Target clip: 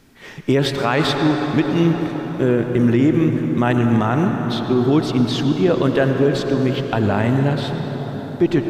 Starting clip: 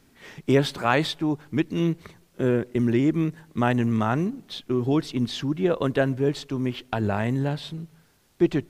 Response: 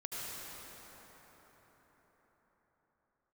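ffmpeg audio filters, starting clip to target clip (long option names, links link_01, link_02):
-filter_complex "[0:a]asplit=2[link_01][link_02];[1:a]atrim=start_sample=2205,asetrate=38367,aresample=44100,lowpass=7200[link_03];[link_02][link_03]afir=irnorm=-1:irlink=0,volume=-5.5dB[link_04];[link_01][link_04]amix=inputs=2:normalize=0,alimiter=level_in=10dB:limit=-1dB:release=50:level=0:latency=1,volume=-5.5dB"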